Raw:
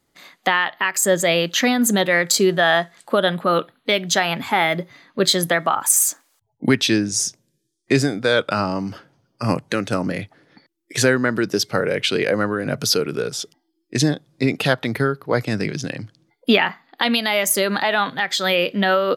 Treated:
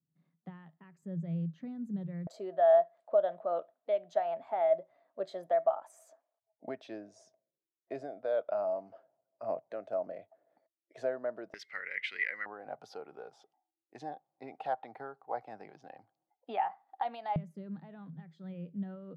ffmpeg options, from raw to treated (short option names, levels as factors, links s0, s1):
-af "asetnsamples=n=441:p=0,asendcmd='2.27 bandpass f 650;11.54 bandpass f 2000;12.46 bandpass f 780;17.36 bandpass f 160',bandpass=f=160:t=q:w=13:csg=0"